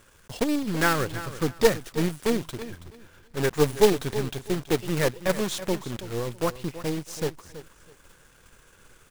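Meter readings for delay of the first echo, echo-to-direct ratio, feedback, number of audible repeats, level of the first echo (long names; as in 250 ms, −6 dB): 327 ms, −13.5 dB, 23%, 2, −14.0 dB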